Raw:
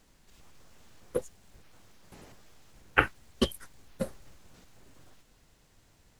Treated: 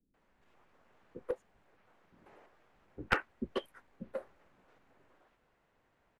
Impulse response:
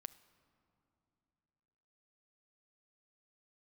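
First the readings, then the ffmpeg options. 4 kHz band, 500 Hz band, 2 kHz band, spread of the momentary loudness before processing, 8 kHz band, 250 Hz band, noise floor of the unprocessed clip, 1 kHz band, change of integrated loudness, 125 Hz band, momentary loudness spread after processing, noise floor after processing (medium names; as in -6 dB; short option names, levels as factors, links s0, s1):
-9.5 dB, -5.5 dB, -7.0 dB, 11 LU, -15.5 dB, -8.5 dB, -64 dBFS, -6.0 dB, -7.5 dB, -10.0 dB, 21 LU, -75 dBFS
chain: -filter_complex "[0:a]acrossover=split=230 2400:gain=0.2 1 0.0794[s0][s1][s2];[s0][s1][s2]amix=inputs=3:normalize=0,acrossover=split=300[s3][s4];[s4]adelay=140[s5];[s3][s5]amix=inputs=2:normalize=0,aeval=exprs='clip(val(0),-1,0.0668)':c=same,volume=0.708"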